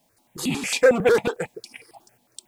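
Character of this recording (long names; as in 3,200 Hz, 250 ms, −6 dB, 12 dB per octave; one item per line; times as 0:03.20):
a quantiser's noise floor 12 bits, dither triangular
tremolo saw up 0.92 Hz, depth 50%
notches that jump at a steady rate 11 Hz 370–1,600 Hz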